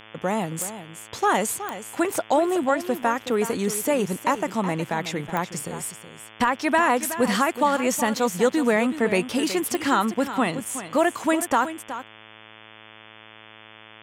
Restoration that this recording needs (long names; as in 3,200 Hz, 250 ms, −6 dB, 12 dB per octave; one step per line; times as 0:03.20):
click removal
hum removal 109.3 Hz, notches 32
echo removal 371 ms −12 dB